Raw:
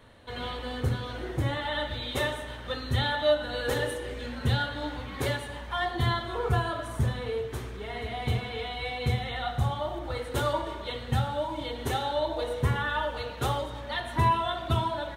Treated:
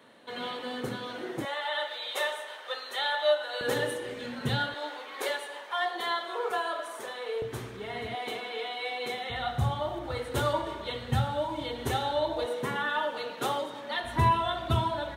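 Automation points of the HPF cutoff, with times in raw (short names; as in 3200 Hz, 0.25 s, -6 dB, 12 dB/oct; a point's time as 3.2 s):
HPF 24 dB/oct
180 Hz
from 1.45 s 520 Hz
from 3.61 s 130 Hz
from 4.74 s 410 Hz
from 7.42 s 100 Hz
from 8.15 s 300 Hz
from 9.3 s 73 Hz
from 12.46 s 190 Hz
from 14.04 s 60 Hz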